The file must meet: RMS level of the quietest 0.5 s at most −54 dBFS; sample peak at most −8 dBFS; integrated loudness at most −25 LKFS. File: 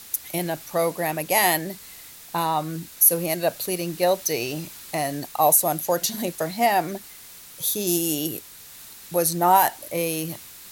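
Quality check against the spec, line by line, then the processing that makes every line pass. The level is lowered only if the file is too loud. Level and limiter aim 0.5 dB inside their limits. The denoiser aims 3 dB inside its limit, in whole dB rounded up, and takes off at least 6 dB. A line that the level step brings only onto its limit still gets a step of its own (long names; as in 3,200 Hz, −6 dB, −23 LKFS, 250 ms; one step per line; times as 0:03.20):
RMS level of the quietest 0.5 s −44 dBFS: out of spec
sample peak −5.0 dBFS: out of spec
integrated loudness −22.5 LKFS: out of spec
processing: broadband denoise 10 dB, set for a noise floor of −44 dBFS
level −3 dB
brickwall limiter −8.5 dBFS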